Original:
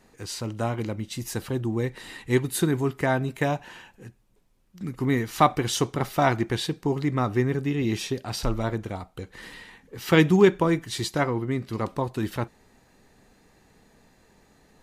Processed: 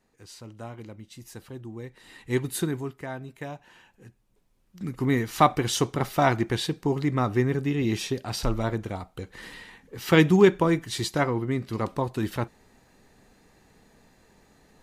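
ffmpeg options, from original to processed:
ffmpeg -i in.wav -af "volume=10dB,afade=type=in:start_time=1.99:duration=0.49:silence=0.316228,afade=type=out:start_time=2.48:duration=0.51:silence=0.316228,afade=type=in:start_time=3.62:duration=1.23:silence=0.251189" out.wav

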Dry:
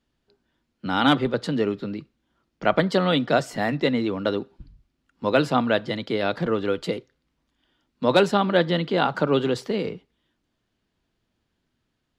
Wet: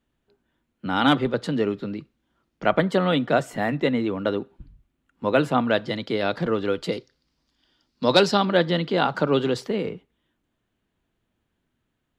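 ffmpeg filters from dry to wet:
ffmpeg -i in.wav -af "asetnsamples=nb_out_samples=441:pad=0,asendcmd='0.96 equalizer g -3;2.72 equalizer g -10;5.71 equalizer g 1;6.92 equalizer g 13;8.45 equalizer g 1.5;9.67 equalizer g -9.5',equalizer=frequency=4900:width_type=o:width=0.65:gain=-9.5" out.wav

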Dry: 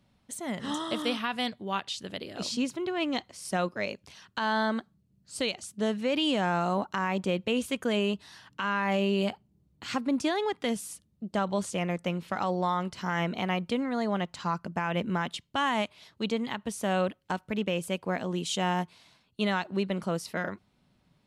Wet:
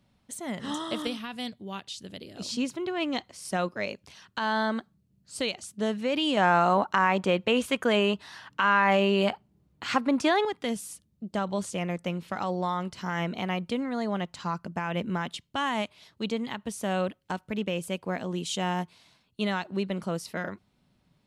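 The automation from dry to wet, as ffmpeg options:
ffmpeg -i in.wav -af "asetnsamples=nb_out_samples=441:pad=0,asendcmd='1.07 equalizer g -9;2.49 equalizer g 0.5;6.37 equalizer g 8;10.45 equalizer g -1.5',equalizer=frequency=1200:width_type=o:width=3:gain=-0.5" out.wav

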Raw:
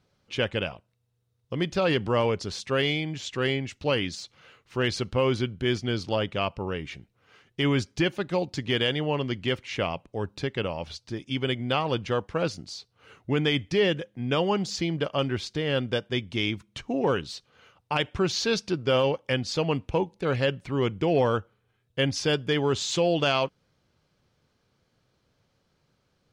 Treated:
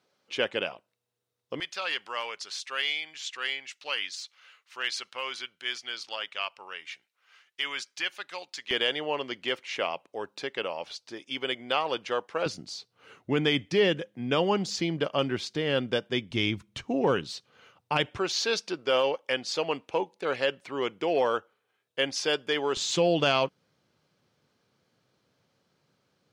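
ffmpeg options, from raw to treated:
ffmpeg -i in.wav -af "asetnsamples=nb_out_samples=441:pad=0,asendcmd='1.6 highpass f 1300;8.71 highpass f 460;12.46 highpass f 170;16.31 highpass f 53;16.84 highpass f 130;18.18 highpass f 430;22.77 highpass f 140',highpass=330" out.wav

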